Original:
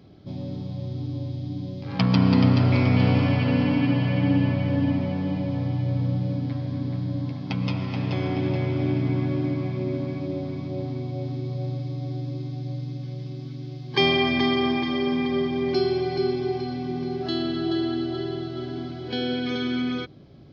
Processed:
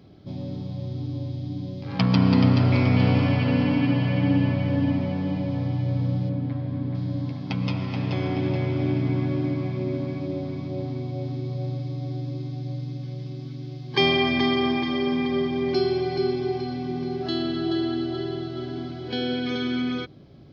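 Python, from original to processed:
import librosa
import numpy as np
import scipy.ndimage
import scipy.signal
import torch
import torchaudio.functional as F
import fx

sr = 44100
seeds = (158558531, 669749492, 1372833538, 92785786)

y = fx.bessel_lowpass(x, sr, hz=2400.0, order=2, at=(6.29, 6.95))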